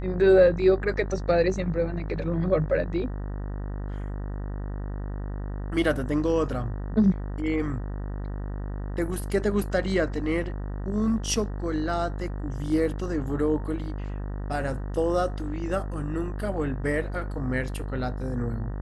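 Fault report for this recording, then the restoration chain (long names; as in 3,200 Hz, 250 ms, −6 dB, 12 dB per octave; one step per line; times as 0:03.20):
mains buzz 50 Hz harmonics 38 −32 dBFS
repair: hum removal 50 Hz, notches 38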